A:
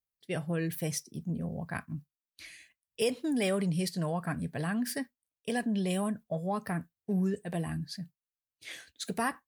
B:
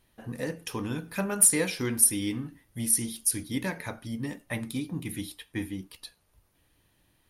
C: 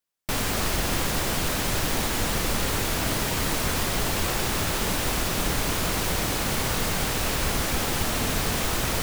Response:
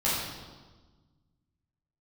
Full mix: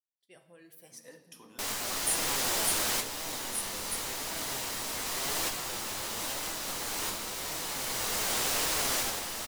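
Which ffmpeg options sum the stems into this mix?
-filter_complex "[0:a]volume=-16.5dB,asplit=3[a][b][c];[b]volume=-18.5dB[d];[1:a]highpass=f=130:w=0.5412,highpass=f=130:w=1.3066,adelay=650,volume=-15dB,asplit=2[e][f];[f]volume=-17.5dB[g];[2:a]highshelf=f=11k:g=-4.5,adelay=1300,volume=-0.5dB,asplit=2[h][i];[i]volume=-22.5dB[j];[c]apad=whole_len=455446[k];[h][k]sidechaincompress=threshold=-53dB:ratio=8:attack=37:release=1010[l];[3:a]atrim=start_sample=2205[m];[d][g][j]amix=inputs=3:normalize=0[n];[n][m]afir=irnorm=-1:irlink=0[o];[a][e][l][o]amix=inputs=4:normalize=0,bass=f=250:g=-14,treble=f=4k:g=7,flanger=delay=6:depth=3.9:regen=67:speed=0.92:shape=triangular"

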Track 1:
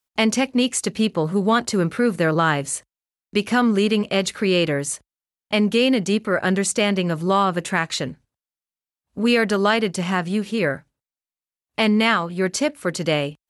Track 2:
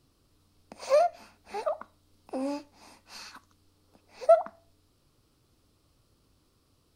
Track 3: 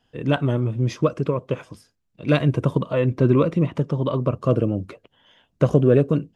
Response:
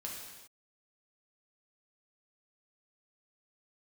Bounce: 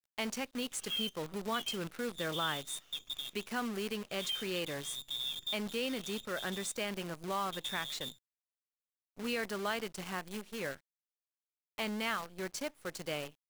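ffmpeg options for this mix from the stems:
-filter_complex "[0:a]lowshelf=f=350:g=-6.5,volume=-16dB,asplit=2[a][b];[1:a]flanger=delay=15.5:depth=7.6:speed=0.5,volume=-6dB[c];[2:a]adynamicequalizer=threshold=0.0282:dfrequency=220:dqfactor=1.2:tfrequency=220:tqfactor=1.2:attack=5:release=100:ratio=0.375:range=3.5:mode=boostabove:tftype=bell,adelay=1900,volume=-15.5dB[d];[b]apad=whole_len=363988[e];[d][e]sidechaincompress=threshold=-58dB:ratio=3:attack=25:release=231[f];[c][f]amix=inputs=2:normalize=0,lowpass=f=3.2k:t=q:w=0.5098,lowpass=f=3.2k:t=q:w=0.6013,lowpass=f=3.2k:t=q:w=0.9,lowpass=f=3.2k:t=q:w=2.563,afreqshift=-3800,alimiter=level_in=5.5dB:limit=-24dB:level=0:latency=1:release=496,volume=-5.5dB,volume=0dB[g];[a][g]amix=inputs=2:normalize=0,acrusher=bits=8:dc=4:mix=0:aa=0.000001"

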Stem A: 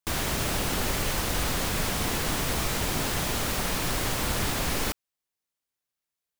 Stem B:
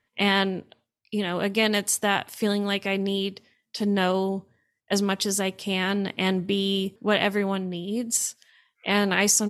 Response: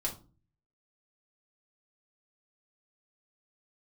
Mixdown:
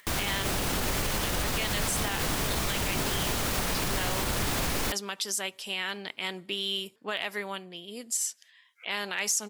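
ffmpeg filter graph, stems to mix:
-filter_complex "[0:a]volume=3dB[a];[1:a]highpass=f=1.4k:p=1,volume=12.5dB,asoftclip=hard,volume=-12.5dB,volume=-0.5dB[b];[a][b]amix=inputs=2:normalize=0,acompressor=mode=upward:threshold=-42dB:ratio=2.5,alimiter=limit=-19dB:level=0:latency=1:release=73"

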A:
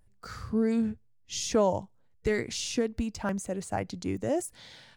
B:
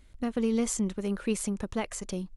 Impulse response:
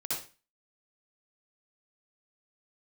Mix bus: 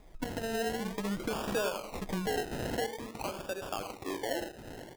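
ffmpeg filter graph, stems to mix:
-filter_complex "[0:a]highpass=f=380:w=0.5412,highpass=f=380:w=1.3066,bandreject=f=60:t=h:w=6,bandreject=f=120:t=h:w=6,bandreject=f=180:t=h:w=6,bandreject=f=240:t=h:w=6,bandreject=f=300:t=h:w=6,bandreject=f=360:t=h:w=6,bandreject=f=420:t=h:w=6,bandreject=f=480:t=h:w=6,deesser=0.85,volume=-1dB,asplit=3[a][b][c];[b]volume=-10.5dB[d];[1:a]aecho=1:1:6.4:0.81,acompressor=threshold=-31dB:ratio=6,volume=-2.5dB,asplit=2[e][f];[f]volume=-18.5dB[g];[c]apad=whole_len=104594[h];[e][h]sidechaincompress=threshold=-44dB:ratio=8:attack=16:release=184[i];[2:a]atrim=start_sample=2205[j];[d][g]amix=inputs=2:normalize=0[k];[k][j]afir=irnorm=-1:irlink=0[l];[a][i][l]amix=inputs=3:normalize=0,equalizer=f=970:w=0.31:g=9,acrossover=split=280|3000[m][n][o];[n]acompressor=threshold=-37dB:ratio=5[p];[m][p][o]amix=inputs=3:normalize=0,acrusher=samples=30:mix=1:aa=0.000001:lfo=1:lforange=18:lforate=0.49"

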